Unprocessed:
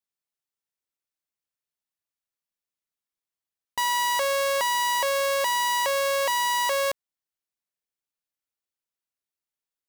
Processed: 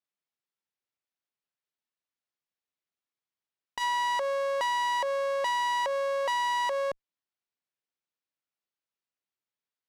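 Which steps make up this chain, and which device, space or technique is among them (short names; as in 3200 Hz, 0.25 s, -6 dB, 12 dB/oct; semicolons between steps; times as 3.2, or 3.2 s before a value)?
valve radio (BPF 100–4600 Hz; tube stage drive 22 dB, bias 0.25; core saturation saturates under 670 Hz)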